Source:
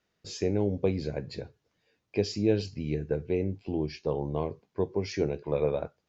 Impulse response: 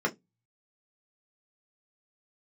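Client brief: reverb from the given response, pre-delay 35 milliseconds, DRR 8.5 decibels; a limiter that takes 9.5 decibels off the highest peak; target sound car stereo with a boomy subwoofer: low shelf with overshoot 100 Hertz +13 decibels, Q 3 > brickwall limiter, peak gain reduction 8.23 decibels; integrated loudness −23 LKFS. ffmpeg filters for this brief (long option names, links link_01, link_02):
-filter_complex "[0:a]alimiter=limit=-21dB:level=0:latency=1,asplit=2[link_01][link_02];[1:a]atrim=start_sample=2205,adelay=35[link_03];[link_02][link_03]afir=irnorm=-1:irlink=0,volume=-18.5dB[link_04];[link_01][link_04]amix=inputs=2:normalize=0,lowshelf=frequency=100:width_type=q:width=3:gain=13,volume=11.5dB,alimiter=limit=-13.5dB:level=0:latency=1"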